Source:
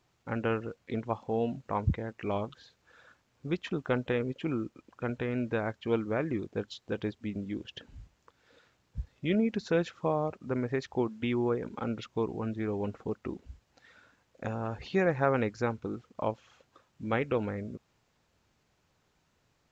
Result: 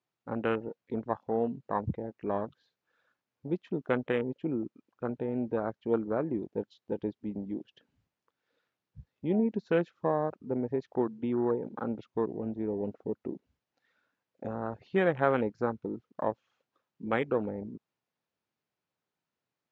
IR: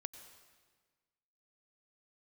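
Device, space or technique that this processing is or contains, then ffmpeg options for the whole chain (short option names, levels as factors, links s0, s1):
over-cleaned archive recording: -af "highpass=160,lowpass=5700,afwtdn=0.0158,volume=1.12"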